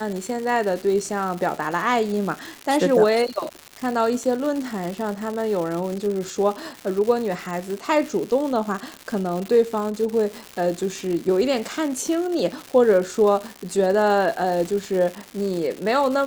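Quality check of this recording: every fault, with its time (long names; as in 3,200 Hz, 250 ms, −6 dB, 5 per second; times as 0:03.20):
surface crackle 270 per second −27 dBFS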